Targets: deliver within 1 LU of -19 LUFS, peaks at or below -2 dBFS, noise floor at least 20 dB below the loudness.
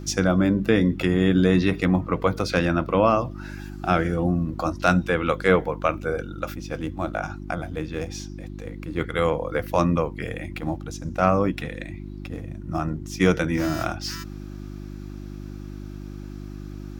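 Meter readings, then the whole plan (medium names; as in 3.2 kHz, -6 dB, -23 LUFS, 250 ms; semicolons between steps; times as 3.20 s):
hum 50 Hz; highest harmonic 350 Hz; hum level -33 dBFS; loudness -24.0 LUFS; peak level -3.5 dBFS; loudness target -19.0 LUFS
-> de-hum 50 Hz, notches 7; trim +5 dB; peak limiter -2 dBFS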